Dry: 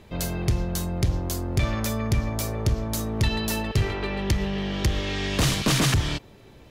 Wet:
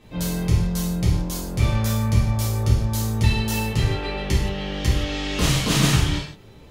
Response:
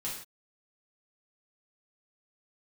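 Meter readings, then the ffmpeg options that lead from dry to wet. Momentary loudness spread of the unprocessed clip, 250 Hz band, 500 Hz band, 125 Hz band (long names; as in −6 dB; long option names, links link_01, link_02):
7 LU, +3.0 dB, +0.5 dB, +4.5 dB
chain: -filter_complex "[1:a]atrim=start_sample=2205[link_01];[0:a][link_01]afir=irnorm=-1:irlink=0"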